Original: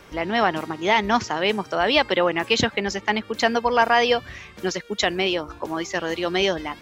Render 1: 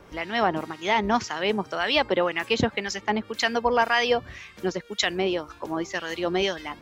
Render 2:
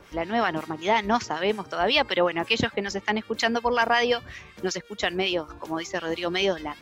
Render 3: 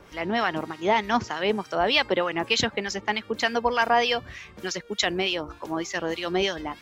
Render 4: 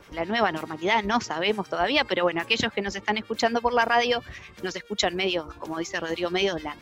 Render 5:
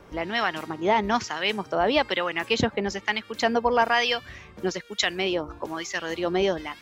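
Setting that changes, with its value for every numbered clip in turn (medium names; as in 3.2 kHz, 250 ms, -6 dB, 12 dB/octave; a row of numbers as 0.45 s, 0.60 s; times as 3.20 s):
harmonic tremolo, rate: 1.9 Hz, 5.4 Hz, 3.3 Hz, 9.3 Hz, 1.1 Hz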